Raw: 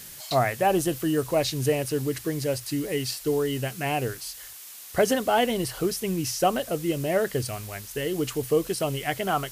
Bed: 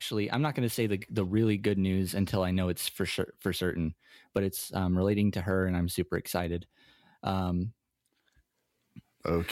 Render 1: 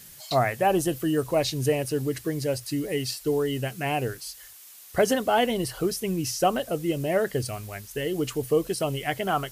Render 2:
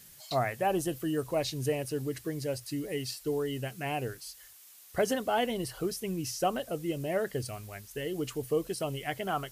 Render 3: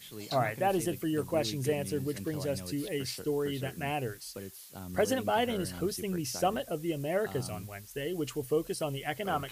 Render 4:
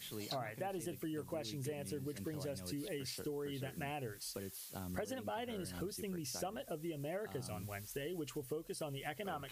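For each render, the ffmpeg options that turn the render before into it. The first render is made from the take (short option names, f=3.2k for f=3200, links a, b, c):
-af "afftdn=nr=6:nf=-43"
-af "volume=-6.5dB"
-filter_complex "[1:a]volume=-14dB[a];[0:a][a]amix=inputs=2:normalize=0"
-af "acompressor=threshold=-40dB:ratio=6"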